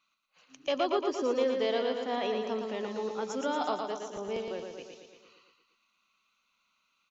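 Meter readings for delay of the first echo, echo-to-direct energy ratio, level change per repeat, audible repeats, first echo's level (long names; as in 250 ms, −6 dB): 115 ms, −3.0 dB, −4.5 dB, 7, −5.0 dB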